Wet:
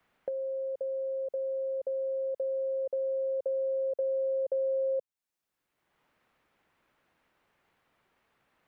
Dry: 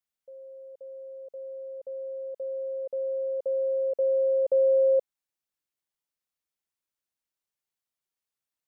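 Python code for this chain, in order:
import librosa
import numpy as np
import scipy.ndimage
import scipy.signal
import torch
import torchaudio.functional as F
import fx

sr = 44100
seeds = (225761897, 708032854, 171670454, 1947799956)

y = fx.band_squash(x, sr, depth_pct=100)
y = y * librosa.db_to_amplitude(-3.5)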